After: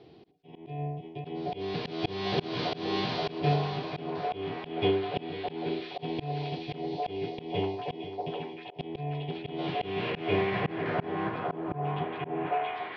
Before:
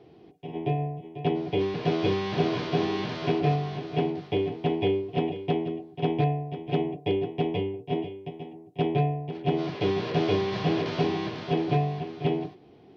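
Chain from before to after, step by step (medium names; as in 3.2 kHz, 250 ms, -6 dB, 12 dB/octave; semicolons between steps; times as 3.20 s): low-pass sweep 4.4 kHz -> 720 Hz, 9.04–12.85 s; repeats whose band climbs or falls 794 ms, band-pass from 680 Hz, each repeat 0.7 oct, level -1 dB; slow attack 236 ms; trim -1 dB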